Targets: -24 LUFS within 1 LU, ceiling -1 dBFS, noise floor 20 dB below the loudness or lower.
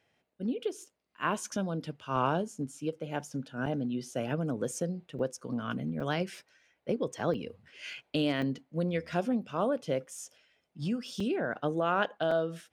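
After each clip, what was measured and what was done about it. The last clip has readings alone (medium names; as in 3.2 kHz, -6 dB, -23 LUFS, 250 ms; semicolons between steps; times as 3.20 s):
dropouts 8; longest dropout 3.8 ms; loudness -33.5 LUFS; peak level -15.0 dBFS; loudness target -24.0 LUFS
-> interpolate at 2.16/3.66/5.19/6.00/7.34/8.42/11.20/12.31 s, 3.8 ms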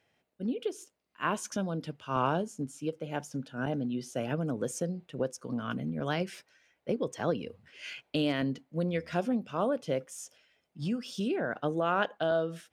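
dropouts 0; loudness -33.0 LUFS; peak level -15.0 dBFS; loudness target -24.0 LUFS
-> trim +9 dB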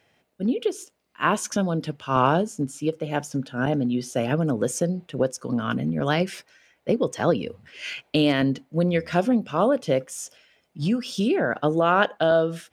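loudness -24.0 LUFS; peak level -6.0 dBFS; noise floor -68 dBFS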